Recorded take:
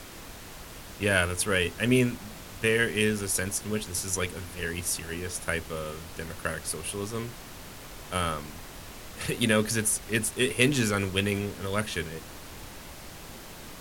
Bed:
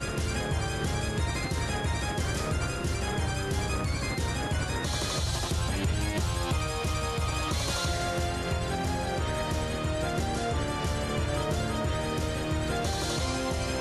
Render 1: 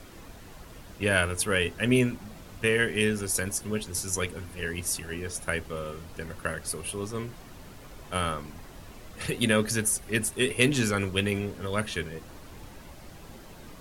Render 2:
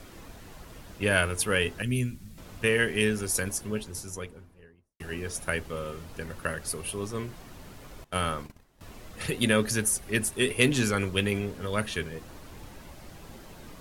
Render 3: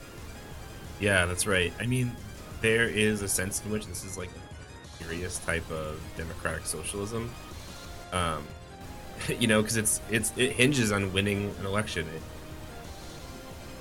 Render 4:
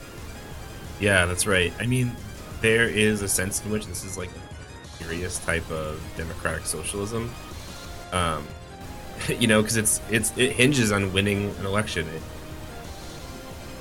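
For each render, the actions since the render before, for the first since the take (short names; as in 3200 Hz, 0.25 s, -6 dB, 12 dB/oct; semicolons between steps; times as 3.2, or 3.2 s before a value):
denoiser 8 dB, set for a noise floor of -44 dBFS
1.82–2.38 EQ curve 140 Hz 0 dB, 790 Hz -21 dB, 2000 Hz -10 dB, 10000 Hz -1 dB; 3.38–5 studio fade out; 8.04–8.81 gate -41 dBFS, range -19 dB
add bed -15.5 dB
gain +4.5 dB; limiter -3 dBFS, peak gain reduction 1.5 dB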